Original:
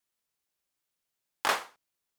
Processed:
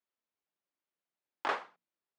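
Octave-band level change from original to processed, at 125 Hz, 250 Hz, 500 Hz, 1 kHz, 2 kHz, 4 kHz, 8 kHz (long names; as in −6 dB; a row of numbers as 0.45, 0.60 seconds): can't be measured, −3.0 dB, −3.5 dB, −4.5 dB, −6.5 dB, −11.5 dB, −21.5 dB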